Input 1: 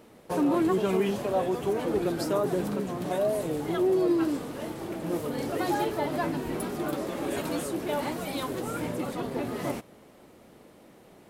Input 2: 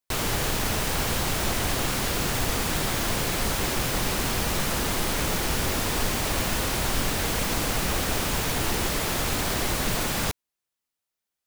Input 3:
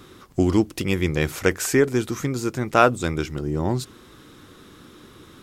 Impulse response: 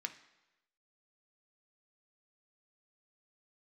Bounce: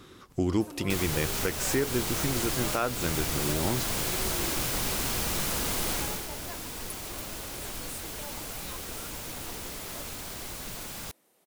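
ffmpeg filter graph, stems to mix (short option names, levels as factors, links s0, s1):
-filter_complex "[0:a]highpass=f=430:p=1,highshelf=f=6000:g=9,adelay=300,volume=0.2[s0];[1:a]bandreject=f=1800:w=28,adelay=800,volume=0.501,afade=t=out:st=5.93:d=0.35:silence=0.354813[s1];[2:a]highshelf=f=7700:g=-9,volume=0.596[s2];[s0][s1][s2]amix=inputs=3:normalize=0,highshelf=f=4400:g=6.5,alimiter=limit=0.158:level=0:latency=1:release=300"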